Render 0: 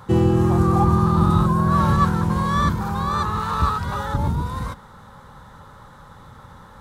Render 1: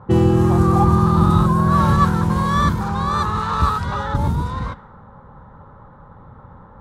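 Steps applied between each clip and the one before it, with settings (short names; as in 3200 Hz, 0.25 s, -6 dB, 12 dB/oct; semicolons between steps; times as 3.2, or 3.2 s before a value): low-pass opened by the level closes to 850 Hz, open at -17.5 dBFS; gain +2.5 dB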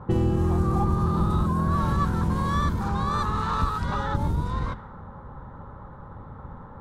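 octaver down 1 oct, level -1 dB; compressor 2.5:1, threshold -25 dBFS, peak gain reduction 12 dB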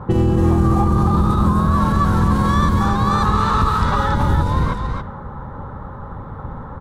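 limiter -17.5 dBFS, peak gain reduction 5 dB; echo 0.276 s -5 dB; gain +9 dB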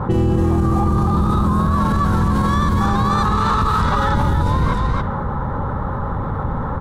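maximiser +10.5 dB; fast leveller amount 50%; gain -9 dB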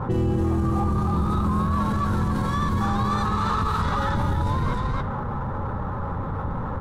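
flange 0.4 Hz, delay 7.5 ms, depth 3.9 ms, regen -49%; in parallel at -10 dB: hard clip -26.5 dBFS, distortion -6 dB; on the sum: gain -3.5 dB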